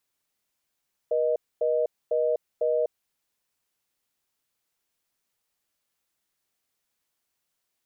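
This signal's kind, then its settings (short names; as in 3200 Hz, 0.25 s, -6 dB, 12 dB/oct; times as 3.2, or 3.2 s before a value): call progress tone reorder tone, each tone -24 dBFS 1.81 s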